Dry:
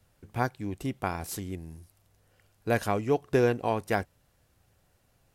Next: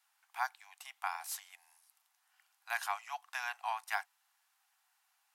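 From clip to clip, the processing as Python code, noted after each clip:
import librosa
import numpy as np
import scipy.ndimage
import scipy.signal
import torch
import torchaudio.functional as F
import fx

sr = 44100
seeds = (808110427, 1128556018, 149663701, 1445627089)

y = scipy.signal.sosfilt(scipy.signal.butter(12, 770.0, 'highpass', fs=sr, output='sos'), x)
y = y * librosa.db_to_amplitude(-3.0)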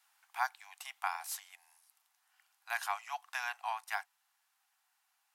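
y = fx.rider(x, sr, range_db=5, speed_s=0.5)
y = y * librosa.db_to_amplitude(1.0)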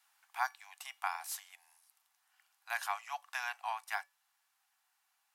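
y = fx.comb_fb(x, sr, f0_hz=570.0, decay_s=0.23, harmonics='all', damping=0.0, mix_pct=50)
y = y * librosa.db_to_amplitude(5.0)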